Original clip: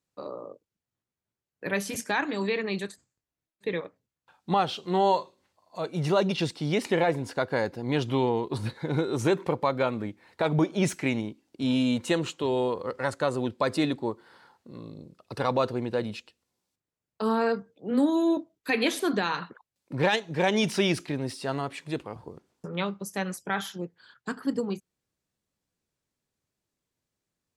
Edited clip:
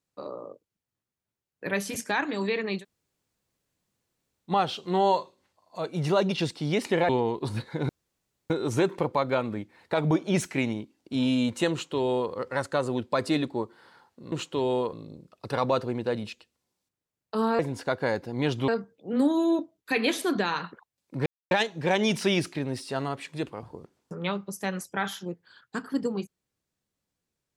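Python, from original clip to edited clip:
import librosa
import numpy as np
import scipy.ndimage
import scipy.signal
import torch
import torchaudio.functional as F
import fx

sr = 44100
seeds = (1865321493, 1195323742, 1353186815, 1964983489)

y = fx.edit(x, sr, fx.room_tone_fill(start_s=2.8, length_s=1.7, crossfade_s=0.1),
    fx.move(start_s=7.09, length_s=1.09, to_s=17.46),
    fx.insert_room_tone(at_s=8.98, length_s=0.61),
    fx.duplicate(start_s=12.19, length_s=0.61, to_s=14.8),
    fx.insert_silence(at_s=20.04, length_s=0.25), tone=tone)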